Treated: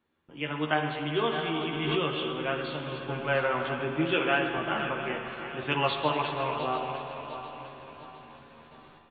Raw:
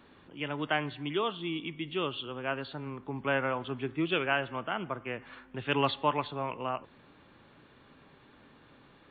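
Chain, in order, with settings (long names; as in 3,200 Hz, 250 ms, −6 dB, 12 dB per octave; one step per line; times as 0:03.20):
feedback delay that plays each chunk backwards 352 ms, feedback 63%, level −9.5 dB
noise gate with hold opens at −46 dBFS
double-tracking delay 13 ms −3.5 dB
spring reverb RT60 3.5 s, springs 39/60 ms, chirp 20 ms, DRR 4 dB
0:01.28–0:02.38: background raised ahead of every attack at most 32 dB per second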